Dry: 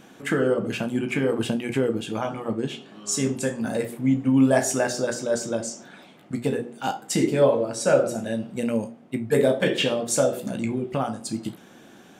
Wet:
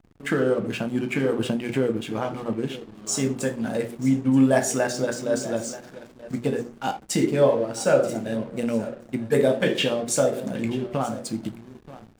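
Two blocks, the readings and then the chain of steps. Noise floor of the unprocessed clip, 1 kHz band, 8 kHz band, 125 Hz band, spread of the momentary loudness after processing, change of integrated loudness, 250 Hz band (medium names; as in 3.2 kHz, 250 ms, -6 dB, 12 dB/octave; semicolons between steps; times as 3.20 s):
-50 dBFS, 0.0 dB, -1.0 dB, 0.0 dB, 12 LU, 0.0 dB, 0.0 dB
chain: delay 931 ms -15.5 dB; hysteresis with a dead band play -36.5 dBFS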